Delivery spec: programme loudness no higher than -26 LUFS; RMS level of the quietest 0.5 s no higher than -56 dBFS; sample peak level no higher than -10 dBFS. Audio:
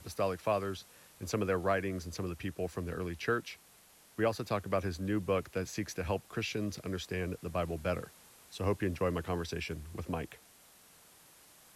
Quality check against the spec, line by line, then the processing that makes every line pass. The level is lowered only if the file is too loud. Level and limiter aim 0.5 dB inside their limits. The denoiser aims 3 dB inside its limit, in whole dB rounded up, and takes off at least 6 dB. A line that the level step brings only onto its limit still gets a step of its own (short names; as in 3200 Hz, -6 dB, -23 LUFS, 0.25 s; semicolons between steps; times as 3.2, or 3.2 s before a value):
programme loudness -35.5 LUFS: OK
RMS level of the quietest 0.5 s -61 dBFS: OK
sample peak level -18.5 dBFS: OK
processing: none